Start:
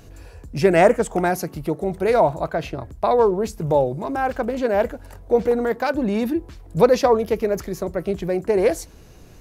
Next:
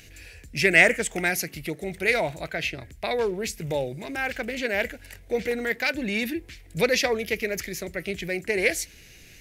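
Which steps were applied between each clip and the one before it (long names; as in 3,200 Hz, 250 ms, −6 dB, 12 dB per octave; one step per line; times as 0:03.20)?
high shelf with overshoot 1,500 Hz +11.5 dB, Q 3
level −7.5 dB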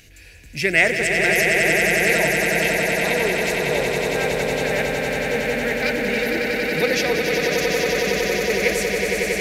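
echo that builds up and dies away 92 ms, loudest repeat 8, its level −5.5 dB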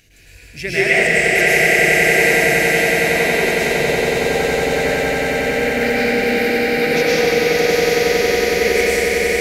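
convolution reverb RT60 2.0 s, pre-delay 97 ms, DRR −8 dB
level −5 dB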